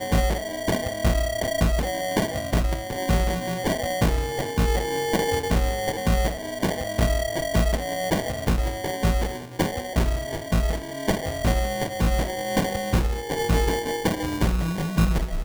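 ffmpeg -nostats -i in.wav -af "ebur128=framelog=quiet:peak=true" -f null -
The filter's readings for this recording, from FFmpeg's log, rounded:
Integrated loudness:
  I:         -25.0 LUFS
  Threshold: -35.0 LUFS
Loudness range:
  LRA:         1.5 LU
  Threshold: -45.1 LUFS
  LRA low:   -26.0 LUFS
  LRA high:  -24.5 LUFS
True peak:
  Peak:       -8.5 dBFS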